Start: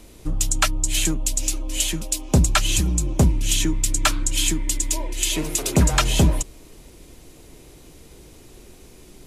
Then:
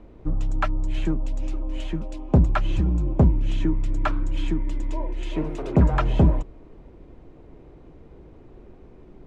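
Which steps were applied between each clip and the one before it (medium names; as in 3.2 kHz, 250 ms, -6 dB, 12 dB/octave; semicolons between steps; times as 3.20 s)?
low-pass 1.2 kHz 12 dB/octave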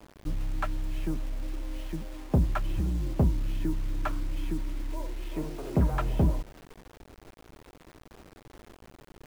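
median filter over 9 samples; bit crusher 7-bit; trim -7 dB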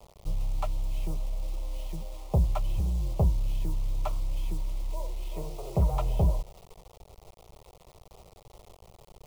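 static phaser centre 670 Hz, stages 4; trim +2 dB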